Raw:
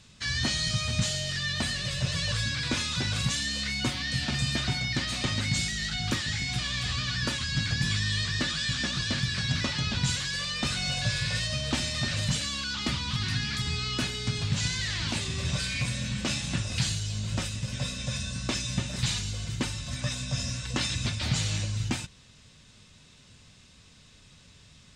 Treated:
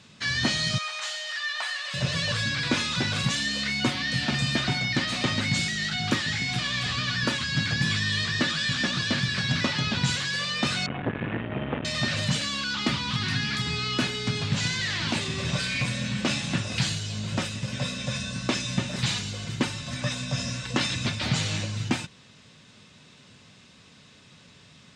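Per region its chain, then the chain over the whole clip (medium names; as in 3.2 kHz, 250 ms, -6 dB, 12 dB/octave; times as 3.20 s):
0.78–1.94 s: high-pass 900 Hz 24 dB/octave + tilt shelf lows +5.5 dB, about 1.3 kHz + doubling 46 ms -12 dB
10.86–11.85 s: CVSD coder 16 kbps + bass shelf 140 Hz +7.5 dB + transformer saturation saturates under 520 Hz
whole clip: high-pass 150 Hz 12 dB/octave; treble shelf 5.4 kHz -11 dB; trim +6 dB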